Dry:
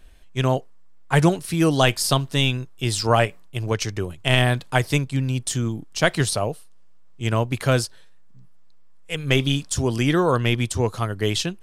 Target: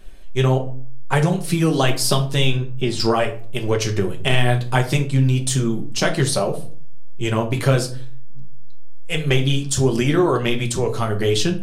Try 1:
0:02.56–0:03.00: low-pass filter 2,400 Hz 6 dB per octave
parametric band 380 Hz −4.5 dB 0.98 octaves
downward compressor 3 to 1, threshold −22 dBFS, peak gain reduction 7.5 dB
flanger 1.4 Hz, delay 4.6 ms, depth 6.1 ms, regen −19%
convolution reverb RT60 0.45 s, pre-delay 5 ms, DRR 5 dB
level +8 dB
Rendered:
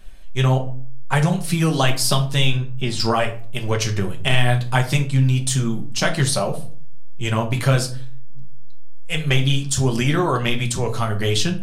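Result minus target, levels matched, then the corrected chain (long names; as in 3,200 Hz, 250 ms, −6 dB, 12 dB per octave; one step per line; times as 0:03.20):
500 Hz band −3.5 dB
0:02.56–0:03.00: low-pass filter 2,400 Hz 6 dB per octave
parametric band 380 Hz +3.5 dB 0.98 octaves
downward compressor 3 to 1, threshold −22 dBFS, peak gain reduction 9.5 dB
flanger 1.4 Hz, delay 4.6 ms, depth 6.1 ms, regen −19%
convolution reverb RT60 0.45 s, pre-delay 5 ms, DRR 5 dB
level +8 dB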